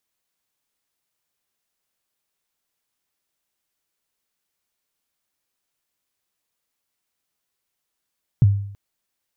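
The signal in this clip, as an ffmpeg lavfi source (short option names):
-f lavfi -i "aevalsrc='0.422*pow(10,-3*t/0.65)*sin(2*PI*(150*0.027/log(100/150)*(exp(log(100/150)*min(t,0.027)/0.027)-1)+100*max(t-0.027,0)))':d=0.33:s=44100"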